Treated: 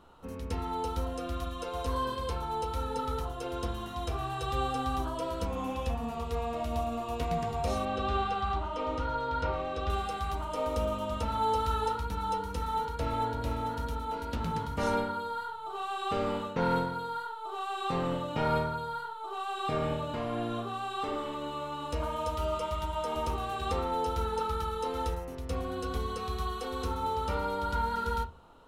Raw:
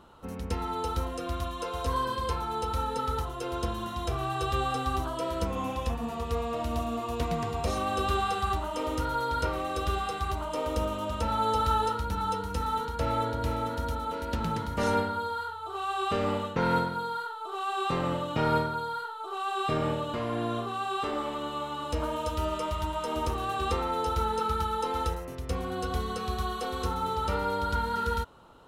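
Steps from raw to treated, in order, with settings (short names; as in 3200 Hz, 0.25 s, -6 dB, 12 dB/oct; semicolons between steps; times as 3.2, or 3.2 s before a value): 7.85–9.9 LPF 4200 Hz 12 dB/oct; reverb RT60 0.30 s, pre-delay 4 ms, DRR 4.5 dB; gain -4 dB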